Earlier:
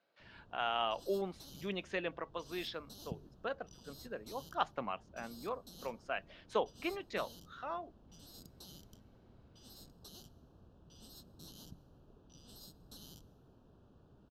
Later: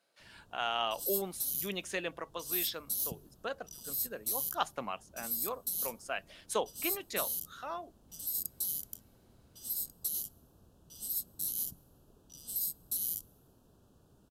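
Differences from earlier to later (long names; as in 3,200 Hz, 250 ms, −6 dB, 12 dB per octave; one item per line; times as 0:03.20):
background: send −9.0 dB
master: remove high-frequency loss of the air 220 metres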